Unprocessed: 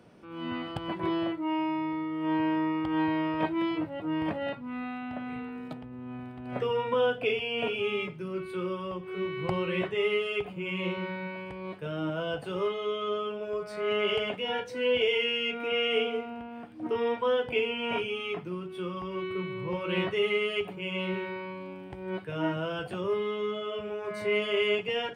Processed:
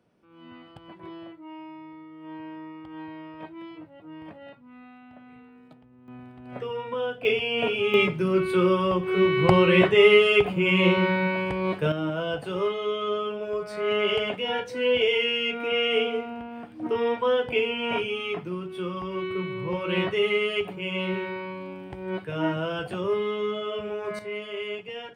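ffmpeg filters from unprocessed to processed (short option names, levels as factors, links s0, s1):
-af "asetnsamples=n=441:p=0,asendcmd='6.08 volume volume -3.5dB;7.25 volume volume 5dB;7.94 volume volume 12dB;11.92 volume volume 3.5dB;24.19 volume volume -6.5dB',volume=0.251"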